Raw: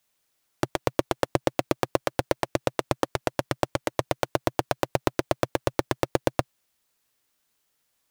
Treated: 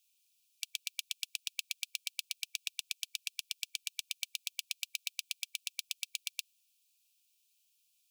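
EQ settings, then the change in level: brick-wall FIR high-pass 2.3 kHz; 0.0 dB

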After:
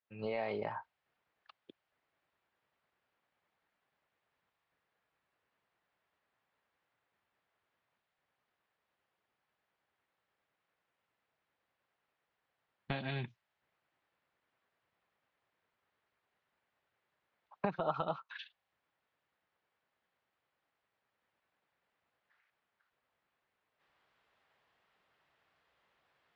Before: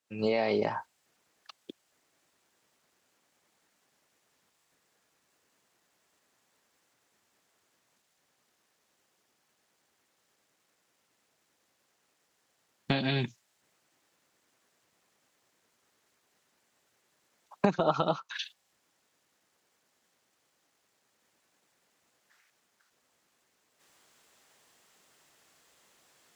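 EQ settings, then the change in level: distance through air 390 m; peaking EQ 270 Hz -9 dB 1.9 oct; -3.5 dB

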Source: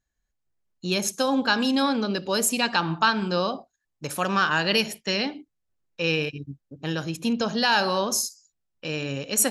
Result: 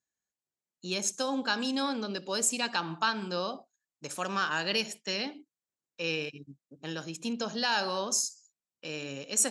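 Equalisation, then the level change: high-pass 180 Hz 12 dB/octave; resonant low-pass 7.8 kHz, resonance Q 2.4; -8.0 dB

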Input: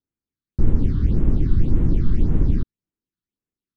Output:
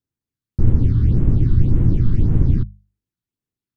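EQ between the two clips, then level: peaking EQ 110 Hz +10.5 dB 0.93 oct; hum notches 50/100/150/200 Hz; 0.0 dB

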